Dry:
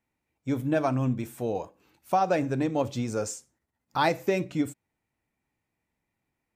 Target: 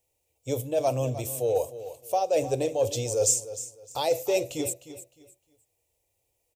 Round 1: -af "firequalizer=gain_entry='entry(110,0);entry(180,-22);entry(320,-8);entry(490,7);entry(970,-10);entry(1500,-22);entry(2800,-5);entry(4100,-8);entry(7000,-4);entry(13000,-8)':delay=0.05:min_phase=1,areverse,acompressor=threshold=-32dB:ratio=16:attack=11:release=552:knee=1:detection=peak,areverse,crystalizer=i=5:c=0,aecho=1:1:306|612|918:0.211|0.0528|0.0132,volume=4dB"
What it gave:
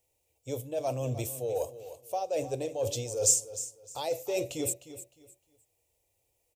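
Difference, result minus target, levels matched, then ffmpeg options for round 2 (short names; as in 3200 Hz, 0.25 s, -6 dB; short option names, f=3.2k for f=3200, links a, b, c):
compressor: peak gain reduction +7 dB
-af "firequalizer=gain_entry='entry(110,0);entry(180,-22);entry(320,-8);entry(490,7);entry(970,-10);entry(1500,-22);entry(2800,-5);entry(4100,-8);entry(7000,-4);entry(13000,-8)':delay=0.05:min_phase=1,areverse,acompressor=threshold=-24.5dB:ratio=16:attack=11:release=552:knee=1:detection=peak,areverse,crystalizer=i=5:c=0,aecho=1:1:306|612|918:0.211|0.0528|0.0132,volume=4dB"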